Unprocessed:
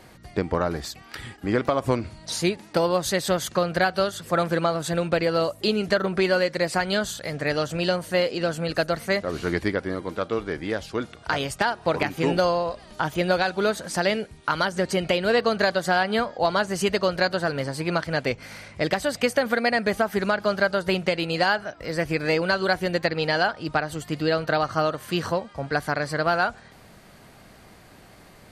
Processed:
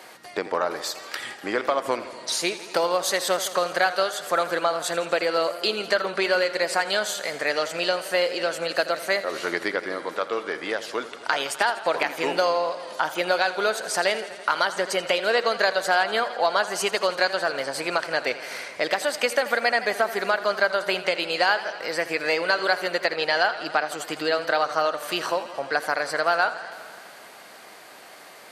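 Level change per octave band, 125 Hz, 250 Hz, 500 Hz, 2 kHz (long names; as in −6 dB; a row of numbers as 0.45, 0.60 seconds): −17.0, −8.5, −0.5, +2.0 decibels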